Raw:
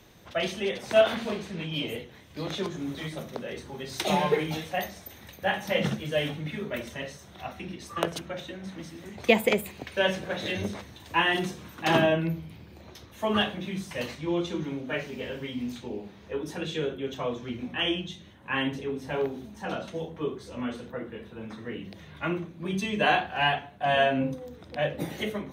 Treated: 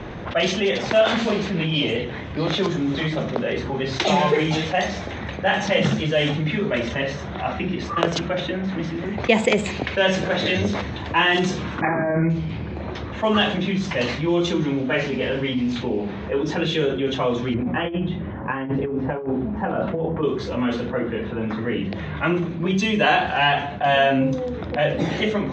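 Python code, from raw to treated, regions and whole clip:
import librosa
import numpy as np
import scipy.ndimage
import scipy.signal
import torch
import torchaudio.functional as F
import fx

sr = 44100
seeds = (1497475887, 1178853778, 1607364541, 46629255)

y = fx.chain(x, sr, fx.brickwall_lowpass(high_hz=2500.0),
    fx.over_compress(threshold_db=-30.0, ratio=-1.0), at=(11.81, 12.3))
y = fx.chain(y, sr, fx.lowpass(hz=1400.0, slope=12),
    fx.over_compress(threshold_db=-35.0, ratio=-0.5), at=(17.54, 20.23))
y = scipy.signal.sosfilt(scipy.signal.butter(16, 7800.0, 'lowpass', fs=sr, output='sos'), y)
y = fx.env_lowpass(y, sr, base_hz=1800.0, full_db=-22.0)
y = fx.env_flatten(y, sr, amount_pct=50)
y = y * 10.0 ** (2.0 / 20.0)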